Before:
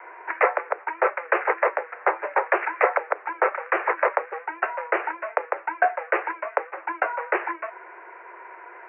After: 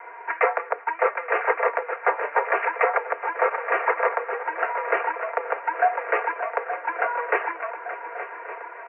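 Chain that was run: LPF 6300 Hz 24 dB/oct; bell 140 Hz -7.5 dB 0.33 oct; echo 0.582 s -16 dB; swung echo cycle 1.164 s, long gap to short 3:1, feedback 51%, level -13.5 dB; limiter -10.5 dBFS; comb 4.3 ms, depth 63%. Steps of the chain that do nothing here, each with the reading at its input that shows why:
LPF 6300 Hz: input band ends at 2900 Hz; bell 140 Hz: input band starts at 300 Hz

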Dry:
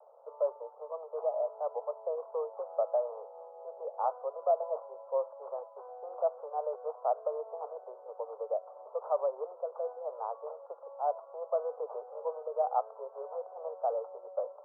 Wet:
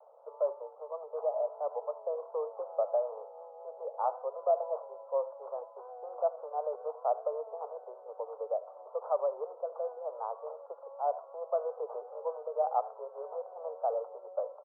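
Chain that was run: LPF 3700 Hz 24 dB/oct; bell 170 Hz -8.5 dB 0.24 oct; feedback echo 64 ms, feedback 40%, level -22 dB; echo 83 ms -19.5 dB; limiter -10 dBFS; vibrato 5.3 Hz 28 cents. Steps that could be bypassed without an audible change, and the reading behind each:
LPF 3700 Hz: input band ends at 1400 Hz; bell 170 Hz: input band starts at 380 Hz; limiter -10 dBFS: input peak -17.0 dBFS

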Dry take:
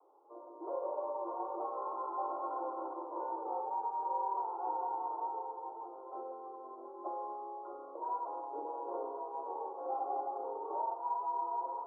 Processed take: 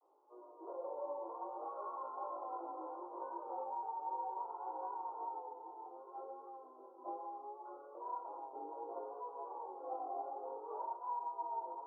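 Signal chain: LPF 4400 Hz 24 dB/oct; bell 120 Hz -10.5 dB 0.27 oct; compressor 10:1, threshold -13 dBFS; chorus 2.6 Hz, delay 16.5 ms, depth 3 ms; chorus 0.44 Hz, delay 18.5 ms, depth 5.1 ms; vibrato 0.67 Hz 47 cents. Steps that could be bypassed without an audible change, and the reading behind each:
LPF 4400 Hz: input band ends at 1400 Hz; bell 120 Hz: input band starts at 250 Hz; compressor, threshold -13 dBFS: input peak -25.5 dBFS

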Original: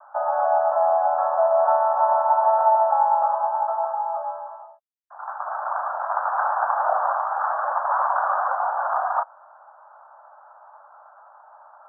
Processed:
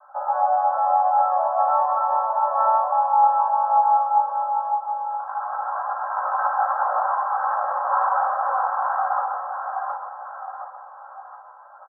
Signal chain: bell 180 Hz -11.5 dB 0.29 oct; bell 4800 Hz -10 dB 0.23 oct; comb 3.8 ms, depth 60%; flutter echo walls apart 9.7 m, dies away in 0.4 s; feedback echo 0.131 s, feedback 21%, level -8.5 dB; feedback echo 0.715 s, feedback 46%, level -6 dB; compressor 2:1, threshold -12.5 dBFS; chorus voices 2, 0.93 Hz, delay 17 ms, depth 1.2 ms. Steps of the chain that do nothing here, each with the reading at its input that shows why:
bell 180 Hz: input band starts at 480 Hz; bell 4800 Hz: input band ends at 1700 Hz

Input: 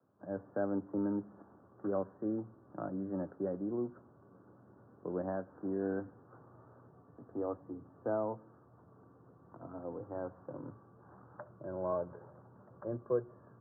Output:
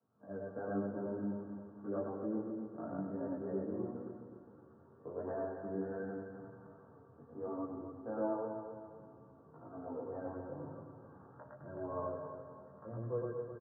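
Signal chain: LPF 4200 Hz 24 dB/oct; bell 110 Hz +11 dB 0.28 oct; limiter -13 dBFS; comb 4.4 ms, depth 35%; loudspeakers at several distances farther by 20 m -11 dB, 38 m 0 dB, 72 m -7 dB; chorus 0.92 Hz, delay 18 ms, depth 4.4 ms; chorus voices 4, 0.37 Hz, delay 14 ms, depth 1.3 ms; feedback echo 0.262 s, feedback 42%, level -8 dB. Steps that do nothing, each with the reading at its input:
LPF 4200 Hz: input band ends at 1600 Hz; limiter -13 dBFS: input peak -21.0 dBFS

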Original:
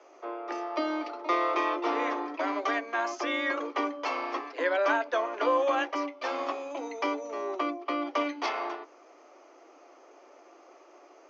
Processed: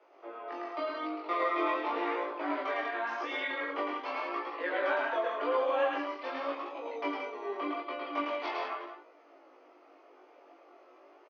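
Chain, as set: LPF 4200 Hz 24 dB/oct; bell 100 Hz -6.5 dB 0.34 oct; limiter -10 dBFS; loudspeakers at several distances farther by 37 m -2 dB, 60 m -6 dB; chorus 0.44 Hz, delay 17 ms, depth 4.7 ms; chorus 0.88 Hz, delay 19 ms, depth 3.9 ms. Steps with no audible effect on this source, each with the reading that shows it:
bell 100 Hz: input band starts at 230 Hz; limiter -10 dBFS: input peak -14.5 dBFS

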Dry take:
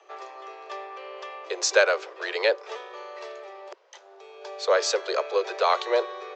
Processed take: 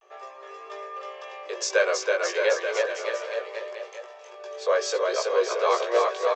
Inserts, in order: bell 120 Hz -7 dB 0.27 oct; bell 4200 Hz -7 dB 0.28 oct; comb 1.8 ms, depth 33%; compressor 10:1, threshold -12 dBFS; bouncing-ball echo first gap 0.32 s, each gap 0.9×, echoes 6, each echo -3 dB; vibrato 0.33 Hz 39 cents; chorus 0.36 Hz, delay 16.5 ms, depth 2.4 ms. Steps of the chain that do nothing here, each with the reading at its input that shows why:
bell 120 Hz: input band starts at 320 Hz

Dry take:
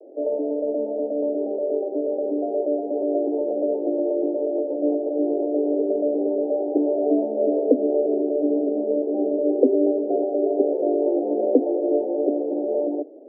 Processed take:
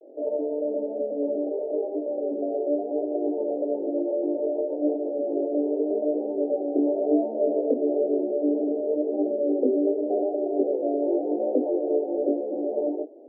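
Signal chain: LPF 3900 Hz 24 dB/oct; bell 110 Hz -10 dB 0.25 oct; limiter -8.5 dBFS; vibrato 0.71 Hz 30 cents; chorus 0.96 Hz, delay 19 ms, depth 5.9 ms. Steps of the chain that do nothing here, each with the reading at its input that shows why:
LPF 3900 Hz: input band ends at 810 Hz; bell 110 Hz: input band starts at 210 Hz

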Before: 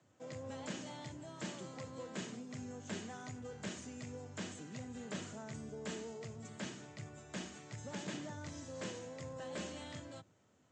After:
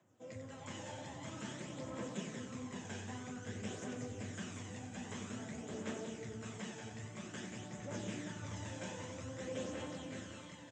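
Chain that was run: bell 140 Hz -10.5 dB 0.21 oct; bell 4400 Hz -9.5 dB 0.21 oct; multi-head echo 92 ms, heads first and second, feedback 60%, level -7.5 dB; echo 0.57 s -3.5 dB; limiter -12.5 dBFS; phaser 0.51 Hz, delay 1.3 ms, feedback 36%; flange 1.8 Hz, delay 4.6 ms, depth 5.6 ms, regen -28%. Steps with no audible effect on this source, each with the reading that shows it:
limiter -12.5 dBFS: input peak -26.5 dBFS

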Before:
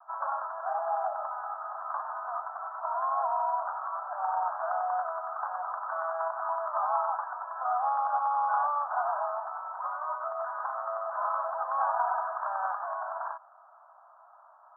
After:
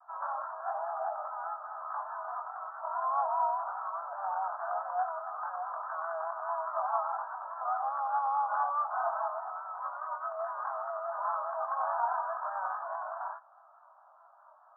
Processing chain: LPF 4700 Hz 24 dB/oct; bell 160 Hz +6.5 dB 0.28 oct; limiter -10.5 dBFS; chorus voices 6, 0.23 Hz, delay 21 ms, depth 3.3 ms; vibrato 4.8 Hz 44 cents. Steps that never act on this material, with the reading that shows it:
LPF 4700 Hz: input band ends at 1700 Hz; bell 160 Hz: input band starts at 540 Hz; limiter -10.5 dBFS: input peak -15.5 dBFS

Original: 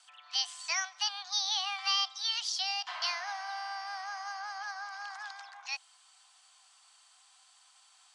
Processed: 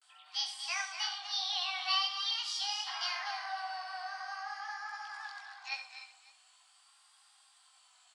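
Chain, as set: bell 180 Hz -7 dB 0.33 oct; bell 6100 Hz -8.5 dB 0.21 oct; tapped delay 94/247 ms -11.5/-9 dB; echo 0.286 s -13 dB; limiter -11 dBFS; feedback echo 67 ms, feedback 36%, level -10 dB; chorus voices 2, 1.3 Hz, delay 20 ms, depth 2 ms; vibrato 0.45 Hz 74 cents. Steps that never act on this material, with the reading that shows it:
bell 180 Hz: input band starts at 640 Hz; limiter -11 dBFS: input peak -17.0 dBFS

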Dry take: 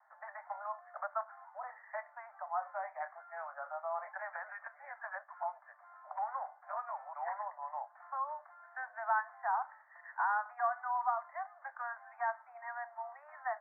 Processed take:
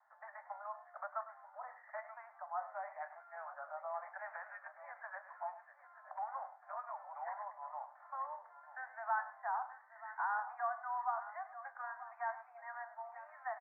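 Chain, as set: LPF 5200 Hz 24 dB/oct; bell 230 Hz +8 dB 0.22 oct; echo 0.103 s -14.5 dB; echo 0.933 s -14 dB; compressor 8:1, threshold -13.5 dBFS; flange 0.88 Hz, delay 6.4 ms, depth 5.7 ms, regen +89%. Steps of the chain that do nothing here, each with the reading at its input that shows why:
LPF 5200 Hz: input band ends at 2200 Hz; bell 230 Hz: input band starts at 510 Hz; compressor, threshold -13.5 dBFS: input peak -20.0 dBFS

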